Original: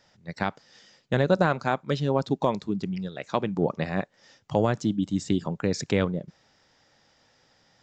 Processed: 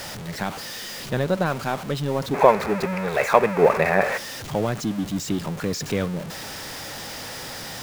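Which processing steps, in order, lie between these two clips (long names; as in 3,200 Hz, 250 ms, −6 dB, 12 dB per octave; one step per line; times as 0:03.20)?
converter with a step at zero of −26.5 dBFS
gain on a spectral selection 0:02.34–0:04.17, 380–2,700 Hz +12 dB
level −2.5 dB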